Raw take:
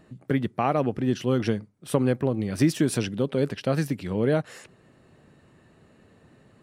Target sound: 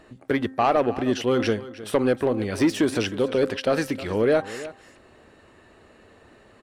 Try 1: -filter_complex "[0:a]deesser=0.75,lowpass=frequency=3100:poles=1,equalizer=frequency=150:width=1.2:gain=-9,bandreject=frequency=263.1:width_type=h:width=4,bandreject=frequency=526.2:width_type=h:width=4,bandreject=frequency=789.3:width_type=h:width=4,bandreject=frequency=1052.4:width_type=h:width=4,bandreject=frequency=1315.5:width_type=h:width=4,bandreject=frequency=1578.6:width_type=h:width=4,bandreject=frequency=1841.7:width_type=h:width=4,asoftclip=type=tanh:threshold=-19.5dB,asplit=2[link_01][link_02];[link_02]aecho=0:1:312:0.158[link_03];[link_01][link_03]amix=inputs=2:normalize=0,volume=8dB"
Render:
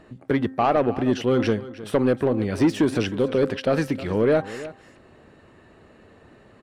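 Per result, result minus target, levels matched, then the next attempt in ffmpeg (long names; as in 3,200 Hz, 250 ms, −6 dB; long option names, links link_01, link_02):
8,000 Hz band −5.5 dB; 125 Hz band +3.5 dB
-filter_complex "[0:a]deesser=0.75,lowpass=frequency=6400:poles=1,equalizer=frequency=150:width=1.2:gain=-9,bandreject=frequency=263.1:width_type=h:width=4,bandreject=frequency=526.2:width_type=h:width=4,bandreject=frequency=789.3:width_type=h:width=4,bandreject=frequency=1052.4:width_type=h:width=4,bandreject=frequency=1315.5:width_type=h:width=4,bandreject=frequency=1578.6:width_type=h:width=4,bandreject=frequency=1841.7:width_type=h:width=4,asoftclip=type=tanh:threshold=-19.5dB,asplit=2[link_01][link_02];[link_02]aecho=0:1:312:0.158[link_03];[link_01][link_03]amix=inputs=2:normalize=0,volume=8dB"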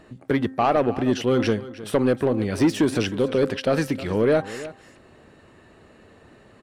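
125 Hz band +3.5 dB
-filter_complex "[0:a]deesser=0.75,lowpass=frequency=6400:poles=1,equalizer=frequency=150:width=1.2:gain=-16,bandreject=frequency=263.1:width_type=h:width=4,bandreject=frequency=526.2:width_type=h:width=4,bandreject=frequency=789.3:width_type=h:width=4,bandreject=frequency=1052.4:width_type=h:width=4,bandreject=frequency=1315.5:width_type=h:width=4,bandreject=frequency=1578.6:width_type=h:width=4,bandreject=frequency=1841.7:width_type=h:width=4,asoftclip=type=tanh:threshold=-19.5dB,asplit=2[link_01][link_02];[link_02]aecho=0:1:312:0.158[link_03];[link_01][link_03]amix=inputs=2:normalize=0,volume=8dB"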